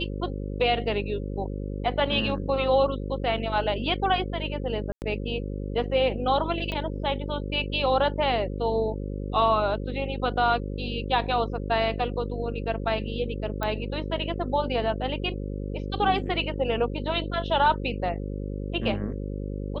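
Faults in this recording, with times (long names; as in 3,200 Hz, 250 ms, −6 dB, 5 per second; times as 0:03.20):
mains buzz 50 Hz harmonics 11 −32 dBFS
0:04.92–0:05.02: drop-out 99 ms
0:06.72: click −19 dBFS
0:13.63: click −15 dBFS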